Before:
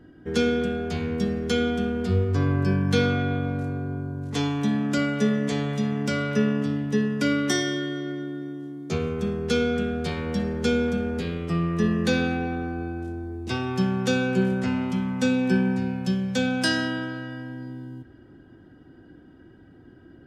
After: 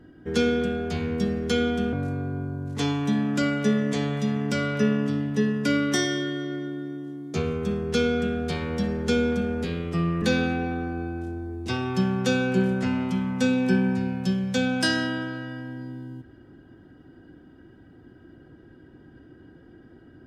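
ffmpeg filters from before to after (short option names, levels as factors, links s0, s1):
-filter_complex "[0:a]asplit=3[s0][s1][s2];[s0]atrim=end=1.932[s3];[s1]atrim=start=3.488:end=11.782[s4];[s2]atrim=start=12.028[s5];[s3][s4]acrossfade=d=0.004:c1=hsin:c2=hsin[s6];[s6][s5]acrossfade=d=0.004:c1=hsin:c2=hsin"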